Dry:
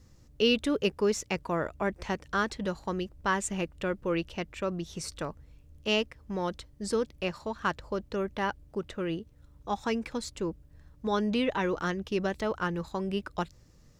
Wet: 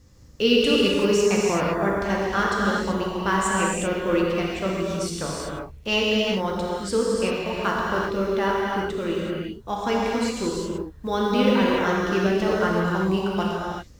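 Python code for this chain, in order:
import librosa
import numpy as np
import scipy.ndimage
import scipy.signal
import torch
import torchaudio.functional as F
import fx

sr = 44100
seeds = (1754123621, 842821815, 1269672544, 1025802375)

y = fx.block_float(x, sr, bits=7)
y = fx.rev_gated(y, sr, seeds[0], gate_ms=410, shape='flat', drr_db=-4.5)
y = y * 10.0 ** (2.5 / 20.0)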